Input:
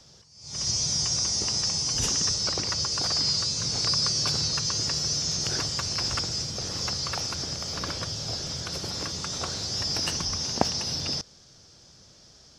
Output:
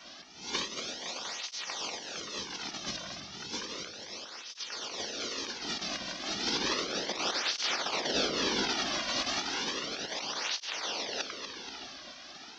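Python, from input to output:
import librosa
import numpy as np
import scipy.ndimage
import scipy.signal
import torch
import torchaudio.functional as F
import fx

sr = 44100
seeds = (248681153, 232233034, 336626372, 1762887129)

y = scipy.signal.sosfilt(scipy.signal.butter(4, 3700.0, 'lowpass', fs=sr, output='sos'), x)
y = fx.high_shelf(y, sr, hz=2200.0, db=8.5)
y = y + 10.0 ** (-21.0 / 20.0) * np.pad(y, (int(687 * sr / 1000.0), 0))[:len(y)]
y = fx.over_compress(y, sr, threshold_db=-36.0, ratio=-0.5)
y = fx.spec_gate(y, sr, threshold_db=-10, keep='weak')
y = fx.low_shelf(y, sr, hz=490.0, db=6.0, at=(6.56, 8.68))
y = fx.echo_feedback(y, sr, ms=239, feedback_pct=54, wet_db=-9.0)
y = fx.flanger_cancel(y, sr, hz=0.33, depth_ms=2.4)
y = y * 10.0 ** (8.5 / 20.0)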